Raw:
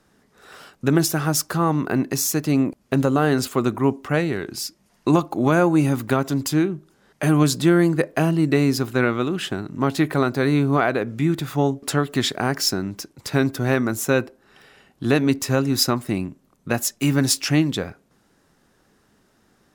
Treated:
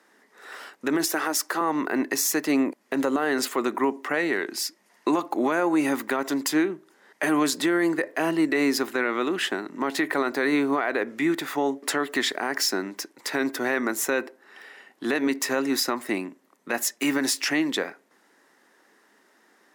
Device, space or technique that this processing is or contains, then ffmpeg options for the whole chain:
laptop speaker: -filter_complex "[0:a]asettb=1/sr,asplit=3[link_01][link_02][link_03];[link_01]atrim=end=1.084[link_04];[link_02]atrim=start=1.08:end=1.61,asetpts=PTS-STARTPTS,afade=type=in:duration=0.004:curve=qsin,afade=type=out:start_time=0.526:duration=0.004:curve=qsin,highpass=frequency=210:width=0.5412,highpass=frequency=210:width=1.3066[link_05];[link_03]atrim=start=1.606[link_06];[link_04][link_05]acrossfade=duration=0.004:curve1=hsin:curve2=qsin[link_07];[link_07][link_06]acrossfade=duration=0.004:curve1=qsin:curve2=hsin,highpass=frequency=270:width=0.5412,highpass=frequency=270:width=1.3066,equalizer=frequency=950:width_type=o:width=0.38:gain=4.5,equalizer=frequency=1900:width_type=o:width=0.42:gain=9.5,alimiter=limit=-14dB:level=0:latency=1:release=69"

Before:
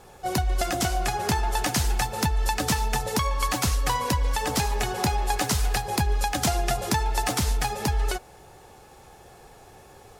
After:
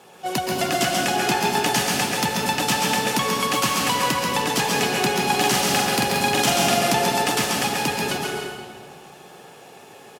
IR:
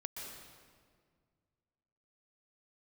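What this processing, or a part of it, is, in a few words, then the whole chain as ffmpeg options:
PA in a hall: -filter_complex "[0:a]asettb=1/sr,asplit=3[link_01][link_02][link_03];[link_01]atrim=end=5.114[link_04];[link_02]atrim=start=5.11:end=6.89,asetpts=PTS-STARTPTS,afade=type=in:duration=0.004:curve=qsin,afade=type=out:start_time=1.776:duration=0.004:curve=qsin,asplit=2[link_05][link_06];[link_06]adelay=44,volume=-2.5dB[link_07];[link_05][link_07]amix=inputs=2:normalize=0,atrim=end_sample=78498[link_08];[link_03]atrim=start=6.886[link_09];[link_04][link_08]acrossfade=duration=0.004:curve1=hsin:curve2=qsin[link_10];[link_10][link_09]acrossfade=duration=0.004:curve1=qsin:curve2=hsin,highpass=frequency=150:width=0.5412,highpass=frequency=150:width=1.3066,equalizer=frequency=2900:width_type=o:width=0.56:gain=7,aecho=1:1:136:0.562[link_11];[1:a]atrim=start_sample=2205[link_12];[link_11][link_12]afir=irnorm=-1:irlink=0,volume=5.5dB"

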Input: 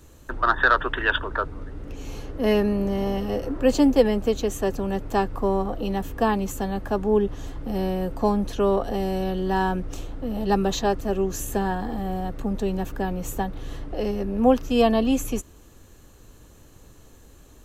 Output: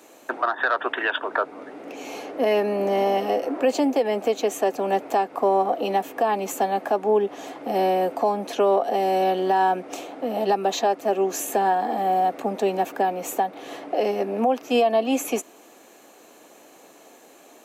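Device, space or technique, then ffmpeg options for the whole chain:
laptop speaker: -af "highpass=frequency=260:width=0.5412,highpass=frequency=260:width=1.3066,equalizer=frequency=710:width_type=o:width=0.59:gain=11,equalizer=frequency=2300:width_type=o:width=0.39:gain=7.5,alimiter=limit=-15dB:level=0:latency=1:release=266,volume=3.5dB"

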